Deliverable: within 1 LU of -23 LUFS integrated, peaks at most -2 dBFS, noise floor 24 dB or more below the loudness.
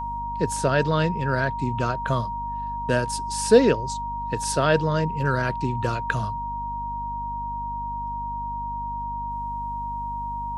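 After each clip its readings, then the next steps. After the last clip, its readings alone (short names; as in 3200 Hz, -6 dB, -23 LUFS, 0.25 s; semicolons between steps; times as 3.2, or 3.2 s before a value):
hum 50 Hz; harmonics up to 250 Hz; hum level -34 dBFS; steady tone 940 Hz; tone level -28 dBFS; loudness -25.5 LUFS; peak -4.5 dBFS; loudness target -23.0 LUFS
-> de-hum 50 Hz, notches 5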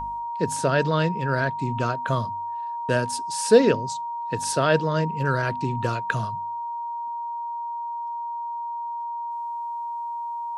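hum none; steady tone 940 Hz; tone level -28 dBFS
-> notch 940 Hz, Q 30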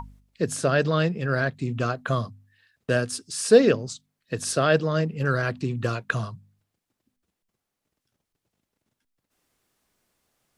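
steady tone none; loudness -24.5 LUFS; peak -5.0 dBFS; loudness target -23.0 LUFS
-> gain +1.5 dB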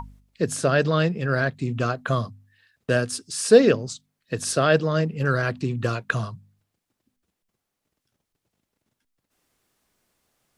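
loudness -23.0 LUFS; peak -3.5 dBFS; noise floor -82 dBFS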